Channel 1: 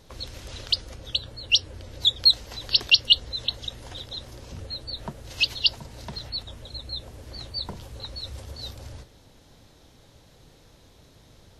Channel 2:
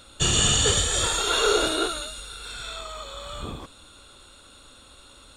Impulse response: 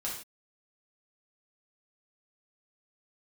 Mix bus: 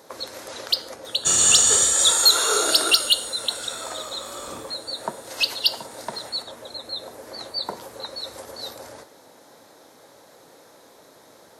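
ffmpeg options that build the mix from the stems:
-filter_complex "[0:a]highpass=430,acontrast=88,equalizer=f=5.4k:t=o:w=1.1:g=-5,volume=2.5dB,asplit=2[a][b];[b]volume=-14dB[c];[1:a]highpass=f=630:p=1,highshelf=f=5.9k:g=11.5,adelay=1050,volume=-0.5dB,asplit=2[d][e];[e]volume=-7.5dB[f];[2:a]atrim=start_sample=2205[g];[c][f]amix=inputs=2:normalize=0[h];[h][g]afir=irnorm=-1:irlink=0[i];[a][d][i]amix=inputs=3:normalize=0,equalizer=f=2.9k:t=o:w=0.82:g=-11"

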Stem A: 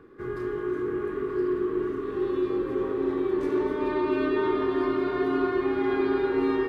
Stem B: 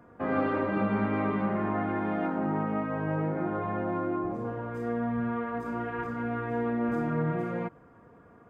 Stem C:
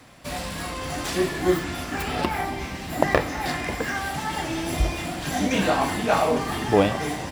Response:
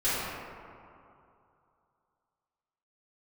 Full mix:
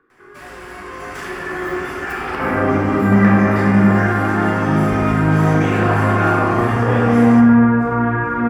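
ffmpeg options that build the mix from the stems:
-filter_complex "[0:a]volume=-14.5dB,asplit=2[a][b];[b]volume=-13.5dB[c];[1:a]acrossover=split=360[d][e];[e]acompressor=threshold=-43dB:ratio=6[f];[d][f]amix=inputs=2:normalize=0,equalizer=f=120:w=1.5:g=5.5,adelay=2200,volume=-0.5dB,asplit=2[g][h];[h]volume=-5dB[i];[2:a]equalizer=f=3.9k:w=4:g=-7.5,adelay=100,volume=-14dB,asplit=2[j][k];[k]volume=-10dB[l];[a][j]amix=inputs=2:normalize=0,highpass=95,acompressor=threshold=-39dB:ratio=6,volume=0dB[m];[3:a]atrim=start_sample=2205[n];[c][i][l]amix=inputs=3:normalize=0[o];[o][n]afir=irnorm=-1:irlink=0[p];[g][m][p]amix=inputs=3:normalize=0,equalizer=f=1.5k:t=o:w=1.4:g=12.5,dynaudnorm=f=380:g=7:m=9dB"

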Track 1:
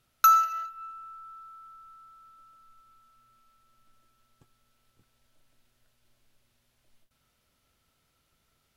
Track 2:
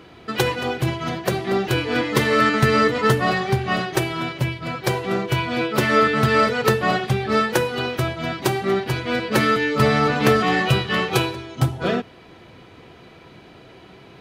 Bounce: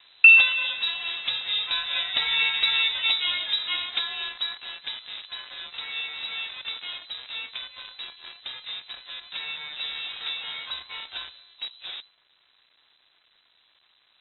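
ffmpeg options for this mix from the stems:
-filter_complex "[0:a]equalizer=f=1.4k:w=7.7:g=11.5,volume=0.5dB[a];[1:a]volume=-6.5dB,afade=t=out:st=4.3:d=0.78:silence=0.316228[b];[a][b]amix=inputs=2:normalize=0,acrusher=bits=7:dc=4:mix=0:aa=0.000001,lowpass=f=3.4k:t=q:w=0.5098,lowpass=f=3.4k:t=q:w=0.6013,lowpass=f=3.4k:t=q:w=0.9,lowpass=f=3.4k:t=q:w=2.563,afreqshift=-4000"

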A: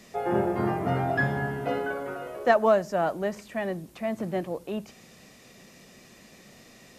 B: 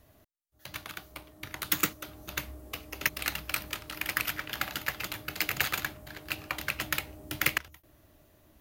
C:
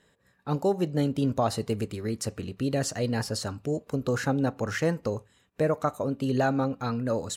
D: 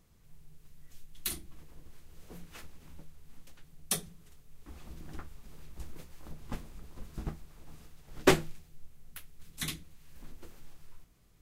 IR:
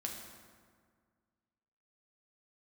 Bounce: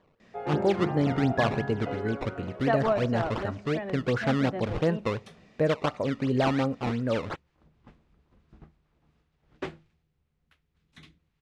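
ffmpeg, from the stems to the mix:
-filter_complex "[0:a]adelay=200,volume=-7dB,asplit=2[a][b];[b]volume=-13dB[c];[2:a]acrusher=samples=16:mix=1:aa=0.000001:lfo=1:lforange=25.6:lforate=2.8,volume=0.5dB[d];[3:a]highpass=47,adelay=1350,volume=-12.5dB[e];[4:a]atrim=start_sample=2205[f];[c][f]afir=irnorm=-1:irlink=0[g];[a][d][e][g]amix=inputs=4:normalize=0,lowpass=3.3k"

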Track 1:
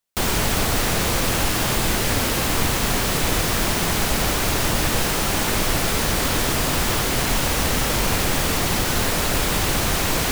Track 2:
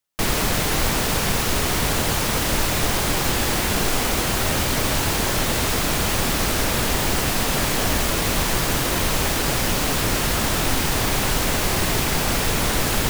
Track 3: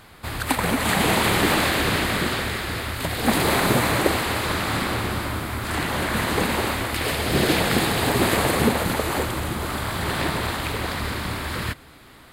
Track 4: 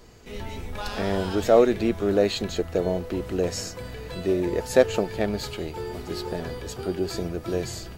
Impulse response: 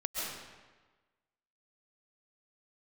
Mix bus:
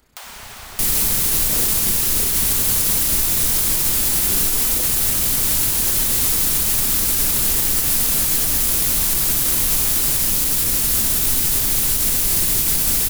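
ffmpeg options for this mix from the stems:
-filter_complex "[0:a]highpass=f=690:w=0.5412,highpass=f=690:w=1.3066,volume=-2.5dB[a];[1:a]equalizer=f=110:w=0.31:g=-5,adelay=600,volume=-0.5dB[b];[2:a]aeval=exprs='val(0)*sin(2*PI*150*n/s)':c=same,volume=-13dB[c];[3:a]tremolo=f=30:d=0.974,volume=-9dB[d];[a][c]amix=inputs=2:normalize=0,acompressor=threshold=-35dB:ratio=6,volume=0dB[e];[b][d]amix=inputs=2:normalize=0,firequalizer=gain_entry='entry(230,0);entry(640,-9);entry(3900,2);entry(11000,14)':delay=0.05:min_phase=1,alimiter=limit=-7.5dB:level=0:latency=1:release=93,volume=0dB[f];[e][f]amix=inputs=2:normalize=0,lowshelf=f=170:g=3"

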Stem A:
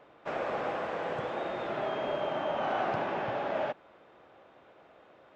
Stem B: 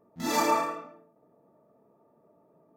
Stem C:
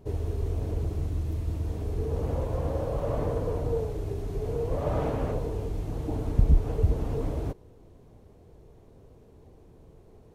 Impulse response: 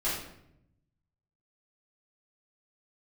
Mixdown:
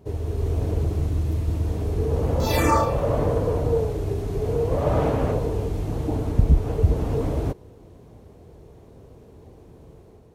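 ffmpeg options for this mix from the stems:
-filter_complex "[1:a]asplit=2[a][b];[b]afreqshift=-2.5[c];[a][c]amix=inputs=2:normalize=1,adelay=2200,volume=2dB[d];[2:a]volume=2.5dB[e];[d][e]amix=inputs=2:normalize=0,dynaudnorm=f=140:g=5:m=4.5dB,highpass=45"

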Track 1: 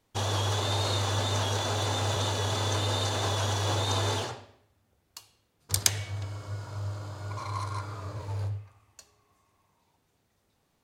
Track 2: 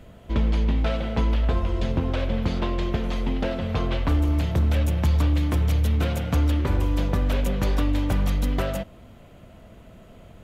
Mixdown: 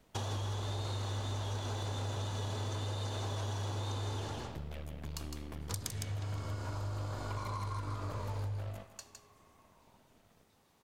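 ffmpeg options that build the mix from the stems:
-filter_complex "[0:a]equalizer=f=910:w=1.5:g=2,acrossover=split=330[a][b];[b]acompressor=threshold=-42dB:ratio=2[c];[a][c]amix=inputs=2:normalize=0,volume=2dB,asplit=2[d][e];[e]volume=-5.5dB[f];[1:a]aeval=exprs='max(val(0),0)':c=same,volume=-15.5dB,asplit=2[g][h];[h]volume=-12.5dB[i];[f][i]amix=inputs=2:normalize=0,aecho=0:1:159:1[j];[d][g][j]amix=inputs=3:normalize=0,lowshelf=f=63:g=-8.5,acompressor=threshold=-35dB:ratio=6"

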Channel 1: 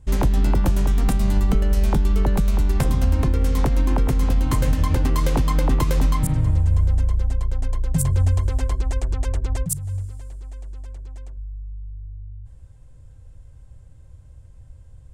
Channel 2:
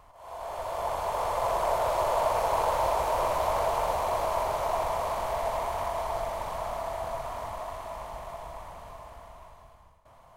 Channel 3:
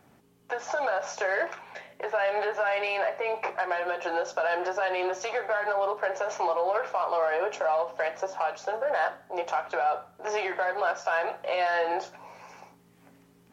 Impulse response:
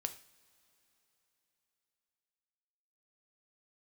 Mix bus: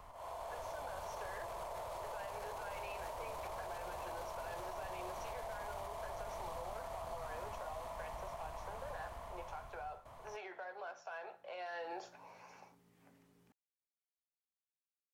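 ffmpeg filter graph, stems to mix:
-filter_complex "[1:a]alimiter=level_in=1dB:limit=-24dB:level=0:latency=1:release=45,volume=-1dB,acompressor=threshold=-44dB:ratio=2.5,volume=0dB[a];[2:a]volume=-9.5dB,afade=t=in:st=11.59:d=0.57:silence=0.354813[b];[a][b]amix=inputs=2:normalize=0,acrossover=split=290|3000[c][d][e];[d]acompressor=threshold=-42dB:ratio=6[f];[c][f][e]amix=inputs=3:normalize=0"

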